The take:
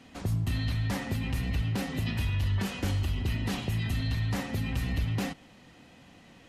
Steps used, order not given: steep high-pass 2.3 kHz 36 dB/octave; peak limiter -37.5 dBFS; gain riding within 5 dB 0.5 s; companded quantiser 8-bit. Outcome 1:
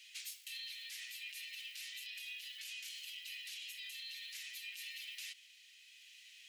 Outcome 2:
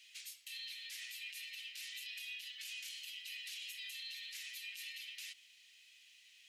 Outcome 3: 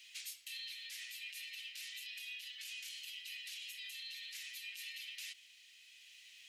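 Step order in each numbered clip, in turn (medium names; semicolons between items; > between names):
companded quantiser > steep high-pass > peak limiter > gain riding; gain riding > steep high-pass > peak limiter > companded quantiser; steep high-pass > companded quantiser > peak limiter > gain riding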